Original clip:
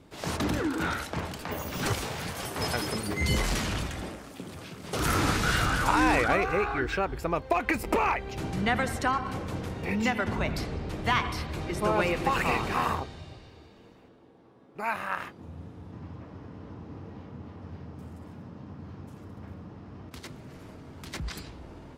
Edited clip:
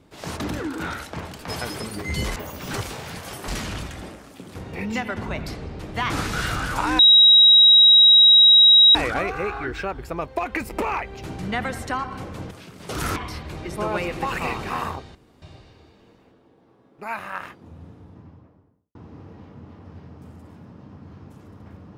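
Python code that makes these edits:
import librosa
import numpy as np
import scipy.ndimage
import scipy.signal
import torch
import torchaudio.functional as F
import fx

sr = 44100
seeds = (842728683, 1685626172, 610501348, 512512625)

y = fx.studio_fade_out(x, sr, start_s=15.59, length_s=1.13)
y = fx.edit(y, sr, fx.move(start_s=2.6, length_s=0.88, to_s=1.48),
    fx.swap(start_s=4.55, length_s=0.65, other_s=9.65, other_length_s=1.55),
    fx.insert_tone(at_s=6.09, length_s=1.96, hz=3830.0, db=-8.5),
    fx.insert_room_tone(at_s=13.19, length_s=0.27), tone=tone)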